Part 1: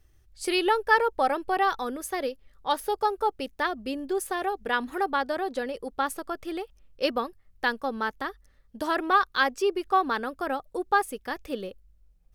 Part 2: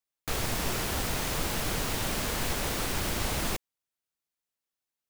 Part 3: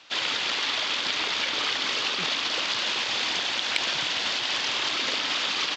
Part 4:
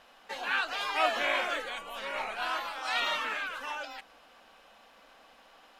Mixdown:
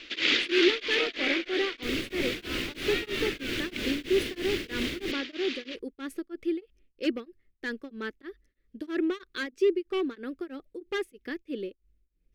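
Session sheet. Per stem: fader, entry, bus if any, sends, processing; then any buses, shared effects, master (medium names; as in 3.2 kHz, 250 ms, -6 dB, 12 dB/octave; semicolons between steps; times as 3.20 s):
-7.0 dB, 0.00 s, no send, overload inside the chain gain 20.5 dB
-6.0 dB, 1.55 s, no send, none
+3.0 dB, 0.00 s, no send, auto duck -15 dB, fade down 1.80 s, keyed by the first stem
-5.5 dB, 0.00 s, no send, none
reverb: none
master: FFT filter 160 Hz 0 dB, 340 Hz +15 dB, 850 Hz -14 dB, 2.1 kHz +8 dB, 9 kHz -6 dB; tremolo of two beating tones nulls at 3.1 Hz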